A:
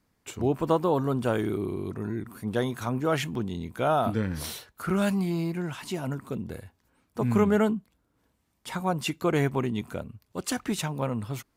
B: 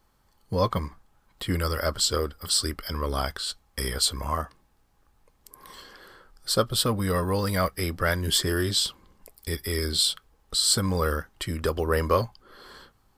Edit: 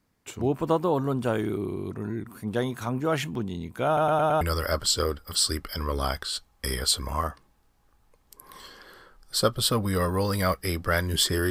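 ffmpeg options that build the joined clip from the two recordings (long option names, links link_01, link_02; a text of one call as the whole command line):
ffmpeg -i cue0.wav -i cue1.wav -filter_complex "[0:a]apad=whole_dur=11.5,atrim=end=11.5,asplit=5[link_01][link_02][link_03][link_04][link_05];[link_01]atrim=end=3.972[link_06];[link_02]atrim=start=3.858:end=3.972[link_07];[link_03]atrim=start=3.858:end=3.972[link_08];[link_04]atrim=start=3.858:end=3.972[link_09];[link_05]atrim=start=3.858:end=3.972[link_10];[1:a]atrim=start=1.548:end=8.64[link_11];[link_06][link_07]acrossfade=duration=0.004:curve1=hsin:curve2=hsin[link_12];[link_12][link_08]acrossfade=duration=0.004:curve1=hsin:curve2=hsin[link_13];[link_13][link_09]acrossfade=duration=0.004:curve1=hsin:curve2=hsin[link_14];[link_14][link_10]acrossfade=duration=0.004:curve1=hsin:curve2=hsin[link_15];[link_15][link_11]acrossfade=duration=0.004:curve1=hsin:curve2=hsin" out.wav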